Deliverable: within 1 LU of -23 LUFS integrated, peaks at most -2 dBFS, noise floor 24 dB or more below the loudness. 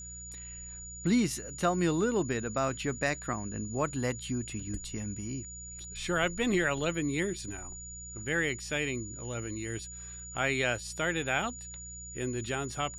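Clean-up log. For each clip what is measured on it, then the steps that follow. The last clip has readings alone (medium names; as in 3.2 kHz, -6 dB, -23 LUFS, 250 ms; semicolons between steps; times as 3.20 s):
hum 60 Hz; highest harmonic 180 Hz; hum level -46 dBFS; steady tone 6.9 kHz; tone level -43 dBFS; loudness -32.5 LUFS; peak level -12.5 dBFS; loudness target -23.0 LUFS
-> de-hum 60 Hz, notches 3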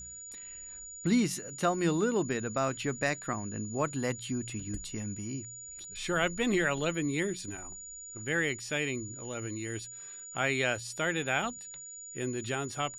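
hum not found; steady tone 6.9 kHz; tone level -43 dBFS
-> band-stop 6.9 kHz, Q 30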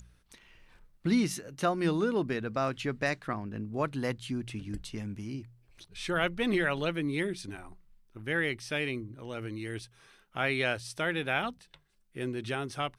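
steady tone not found; loudness -32.5 LUFS; peak level -13.0 dBFS; loudness target -23.0 LUFS
-> trim +9.5 dB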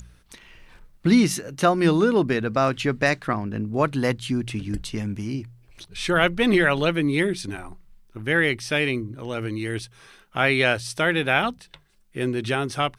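loudness -23.0 LUFS; peak level -3.5 dBFS; noise floor -56 dBFS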